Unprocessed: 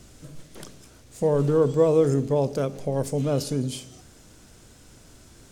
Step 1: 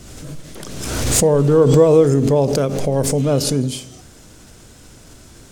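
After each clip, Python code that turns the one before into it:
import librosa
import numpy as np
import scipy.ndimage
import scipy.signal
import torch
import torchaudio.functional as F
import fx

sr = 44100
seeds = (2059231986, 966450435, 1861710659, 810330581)

y = fx.pre_swell(x, sr, db_per_s=34.0)
y = y * 10.0 ** (7.0 / 20.0)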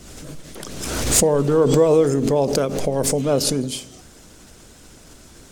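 y = fx.peak_eq(x, sr, hz=110.0, db=-7.0, octaves=0.76)
y = fx.hpss(y, sr, part='percussive', gain_db=5)
y = y * 10.0 ** (-4.0 / 20.0)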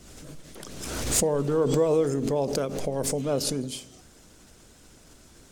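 y = fx.quant_float(x, sr, bits=8)
y = y * 10.0 ** (-7.5 / 20.0)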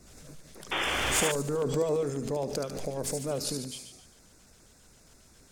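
y = fx.echo_wet_highpass(x, sr, ms=73, feedback_pct=57, hz=1900.0, wet_db=-5.0)
y = fx.filter_lfo_notch(y, sr, shape='square', hz=7.4, low_hz=310.0, high_hz=3100.0, q=2.1)
y = fx.spec_paint(y, sr, seeds[0], shape='noise', start_s=0.71, length_s=0.61, low_hz=290.0, high_hz=3600.0, level_db=-25.0)
y = y * 10.0 ** (-5.0 / 20.0)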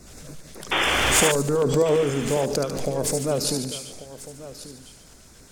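y = x + 10.0 ** (-15.5 / 20.0) * np.pad(x, (int(1140 * sr / 1000.0), 0))[:len(x)]
y = y * 10.0 ** (8.0 / 20.0)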